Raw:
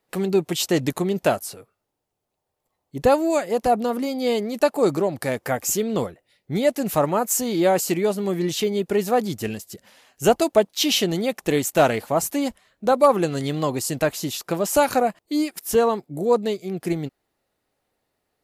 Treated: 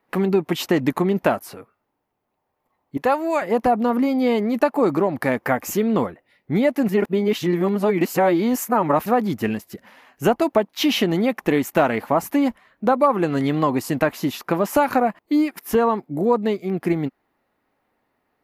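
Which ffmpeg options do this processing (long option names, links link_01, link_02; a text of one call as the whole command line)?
ffmpeg -i in.wav -filter_complex "[0:a]asettb=1/sr,asplit=3[link_01][link_02][link_03];[link_01]atrim=end=2.974[link_04];[link_02]atrim=start=2.97:end=3.42,asetpts=PTS-STARTPTS,afade=type=in:duration=0.004:curve=qsin,afade=type=out:start_time=0.446:duration=0.004:curve=qsin,highpass=frequency=800:poles=1[link_05];[link_03]atrim=start=3.416[link_06];[link_04][link_05]acrossfade=duration=0.004:curve1=hsin:curve2=qsin[link_07];[link_07][link_06]acrossfade=duration=0.004:curve1=qsin:curve2=hsin,asplit=3[link_08][link_09][link_10];[link_08]atrim=end=6.892[link_11];[link_09]atrim=start=6.888:end=9.062,asetpts=PTS-STARTPTS,areverse[link_12];[link_10]atrim=start=9.058[link_13];[link_11][link_12]acrossfade=duration=0.004:curve1=hsin:curve2=hsin[link_14];[link_14][link_13]acrossfade=duration=0.004:curve1=hsin:curve2=hsin,equalizer=frequency=250:width_type=o:width=1:gain=8,equalizer=frequency=1000:width_type=o:width=1:gain=8,equalizer=frequency=2000:width_type=o:width=1:gain=6,equalizer=frequency=4000:width_type=o:width=1:gain=-3,equalizer=frequency=8000:width_type=o:width=1:gain=-10,acompressor=threshold=-15dB:ratio=3" out.wav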